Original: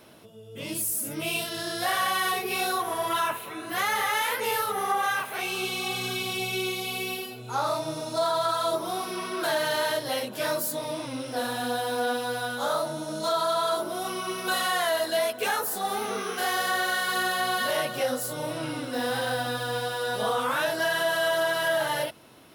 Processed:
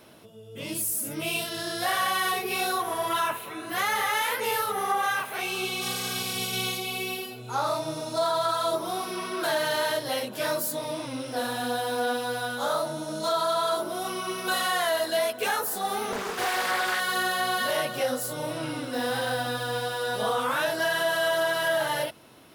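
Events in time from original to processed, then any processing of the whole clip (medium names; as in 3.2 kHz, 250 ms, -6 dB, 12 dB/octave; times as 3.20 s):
5.81–6.77 s: spectral peaks clipped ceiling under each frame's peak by 15 dB
16.12–17.00 s: loudspeaker Doppler distortion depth 0.5 ms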